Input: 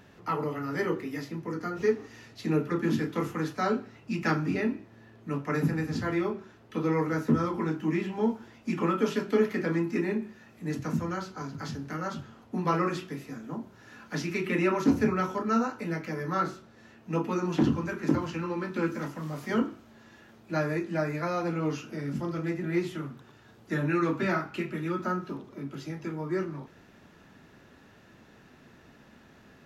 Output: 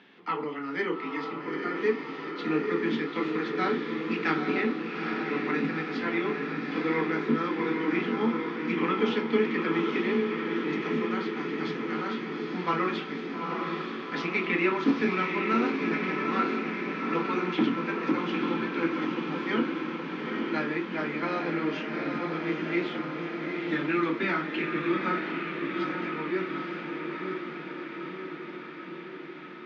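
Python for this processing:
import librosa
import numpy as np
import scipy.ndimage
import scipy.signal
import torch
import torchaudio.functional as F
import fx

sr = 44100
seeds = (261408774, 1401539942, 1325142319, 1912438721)

y = fx.cabinet(x, sr, low_hz=210.0, low_slope=24, high_hz=4300.0, hz=(610.0, 2200.0, 3300.0), db=(-9, 7, 8))
y = fx.echo_diffused(y, sr, ms=857, feedback_pct=70, wet_db=-3.5)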